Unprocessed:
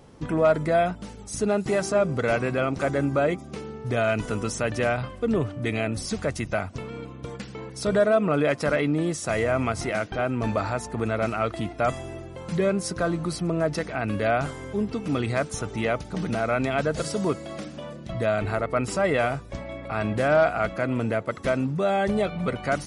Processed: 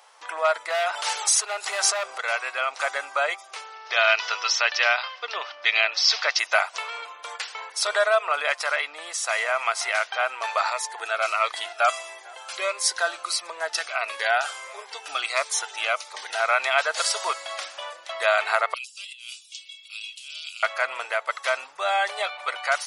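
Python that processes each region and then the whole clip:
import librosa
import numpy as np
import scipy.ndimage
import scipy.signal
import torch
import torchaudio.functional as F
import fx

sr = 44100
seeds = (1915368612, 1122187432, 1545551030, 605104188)

y = fx.chain(x, sr, fx.clip_hard(threshold_db=-19.0),
    fx.env_flatten(amount_pct=100), at=(0.7, 2.18))
y = fx.chain(y, sr, fx.ellip_lowpass(hz=5400.0, order=4, stop_db=50),
    fx.high_shelf(hz=3100.0, db=10.5), at=(3.72, 6.39))
y = fx.chain(y, sr, fx.echo_single(ms=449, db=-21.5),
    fx.notch_cascade(direction='falling', hz=1.5), at=(10.7, 16.4))
y = fx.chain(y, sr, fx.ellip_highpass(hz=2800.0, order=4, stop_db=40),
    fx.over_compress(threshold_db=-49.0, ratio=-1.0), at=(18.74, 20.63))
y = fx.rider(y, sr, range_db=10, speed_s=2.0)
y = scipy.signal.sosfilt(scipy.signal.cheby2(4, 60, 230.0, 'highpass', fs=sr, output='sos'), y)
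y = fx.dynamic_eq(y, sr, hz=3900.0, q=0.94, threshold_db=-46.0, ratio=4.0, max_db=4)
y = F.gain(torch.from_numpy(y), 5.0).numpy()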